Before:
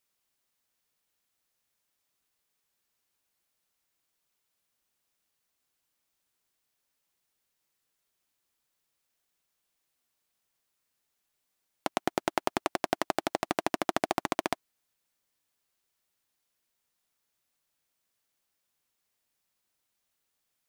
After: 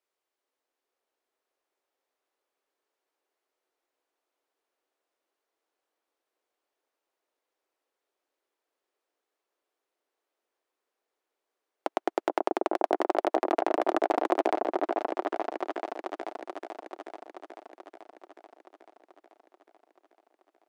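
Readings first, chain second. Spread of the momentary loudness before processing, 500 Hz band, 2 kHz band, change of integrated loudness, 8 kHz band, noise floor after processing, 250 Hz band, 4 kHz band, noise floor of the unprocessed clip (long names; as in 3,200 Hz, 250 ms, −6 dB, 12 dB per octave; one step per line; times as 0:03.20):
5 LU, +7.0 dB, −1.0 dB, +2.5 dB, below −10 dB, below −85 dBFS, +3.5 dB, −6.0 dB, −81 dBFS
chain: inverse Chebyshev high-pass filter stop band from 180 Hz, stop band 40 dB
spectral tilt −4 dB per octave
echo whose low-pass opens from repeat to repeat 435 ms, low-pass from 750 Hz, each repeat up 1 octave, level 0 dB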